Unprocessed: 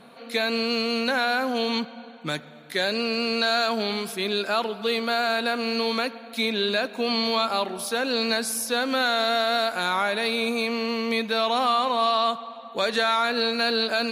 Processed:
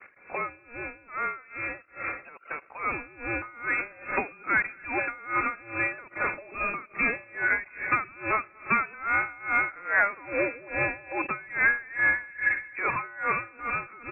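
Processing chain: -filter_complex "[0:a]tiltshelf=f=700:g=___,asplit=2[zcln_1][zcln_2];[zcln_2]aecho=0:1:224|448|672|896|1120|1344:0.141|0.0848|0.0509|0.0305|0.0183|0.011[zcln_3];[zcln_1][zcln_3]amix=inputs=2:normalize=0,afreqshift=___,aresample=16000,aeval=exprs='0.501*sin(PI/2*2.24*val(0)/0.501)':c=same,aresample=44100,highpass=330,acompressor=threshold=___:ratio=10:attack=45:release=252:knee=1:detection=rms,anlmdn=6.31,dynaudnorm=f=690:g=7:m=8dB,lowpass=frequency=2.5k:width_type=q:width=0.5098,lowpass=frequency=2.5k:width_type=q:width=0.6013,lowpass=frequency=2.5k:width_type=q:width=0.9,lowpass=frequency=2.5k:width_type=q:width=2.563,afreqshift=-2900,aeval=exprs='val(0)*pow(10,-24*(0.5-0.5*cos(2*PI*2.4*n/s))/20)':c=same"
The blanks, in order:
-8, 61, -26dB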